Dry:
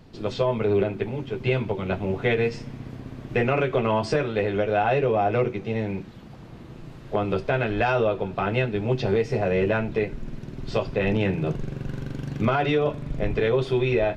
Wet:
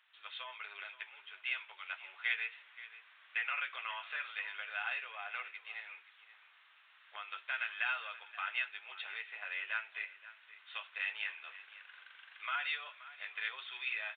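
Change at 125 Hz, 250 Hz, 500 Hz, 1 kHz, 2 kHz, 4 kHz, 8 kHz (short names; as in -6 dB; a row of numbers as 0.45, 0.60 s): under -40 dB, under -40 dB, -38.0 dB, -17.0 dB, -5.5 dB, -6.0 dB, n/a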